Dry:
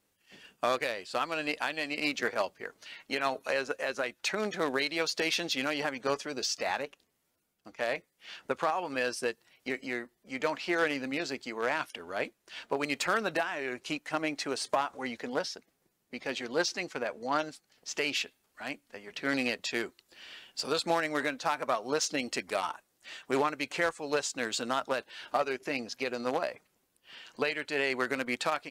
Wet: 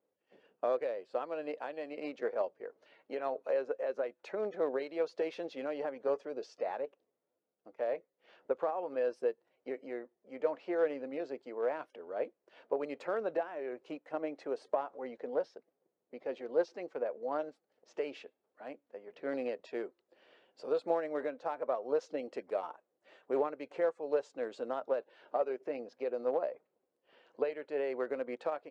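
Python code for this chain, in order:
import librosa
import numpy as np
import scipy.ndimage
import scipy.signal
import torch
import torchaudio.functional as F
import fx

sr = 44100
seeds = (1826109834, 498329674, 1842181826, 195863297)

y = fx.bandpass_q(x, sr, hz=500.0, q=1.8)
y = fx.peak_eq(y, sr, hz=510.0, db=2.5, octaves=0.27)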